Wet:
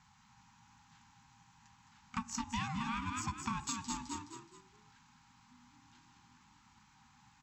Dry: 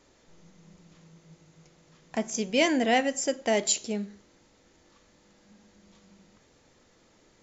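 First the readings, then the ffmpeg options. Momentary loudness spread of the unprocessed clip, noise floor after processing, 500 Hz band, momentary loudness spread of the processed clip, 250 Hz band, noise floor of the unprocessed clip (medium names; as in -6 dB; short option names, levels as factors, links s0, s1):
11 LU, -66 dBFS, -35.5 dB, 10 LU, -12.0 dB, -63 dBFS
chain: -filter_complex "[0:a]aeval=exprs='val(0)*sin(2*PI*460*n/s)':c=same,crystalizer=i=1.5:c=0,asplit=2[s0][s1];[s1]asoftclip=type=hard:threshold=0.106,volume=0.562[s2];[s0][s2]amix=inputs=2:normalize=0,aeval=exprs='0.531*(cos(1*acos(clip(val(0)/0.531,-1,1)))-cos(1*PI/2))+0.0133*(cos(7*acos(clip(val(0)/0.531,-1,1)))-cos(7*PI/2))+0.0106*(cos(8*acos(clip(val(0)/0.531,-1,1)))-cos(8*PI/2))':c=same,lowpass=f=1900:p=1,afftfilt=real='re*(1-between(b*sr/4096,250,770))':imag='im*(1-between(b*sr/4096,250,770))':win_size=4096:overlap=0.75,highpass=55,asplit=5[s3][s4][s5][s6][s7];[s4]adelay=211,afreqshift=43,volume=0.447[s8];[s5]adelay=422,afreqshift=86,volume=0.151[s9];[s6]adelay=633,afreqshift=129,volume=0.0519[s10];[s7]adelay=844,afreqshift=172,volume=0.0176[s11];[s3][s8][s9][s10][s11]amix=inputs=5:normalize=0,acompressor=threshold=0.0178:ratio=8"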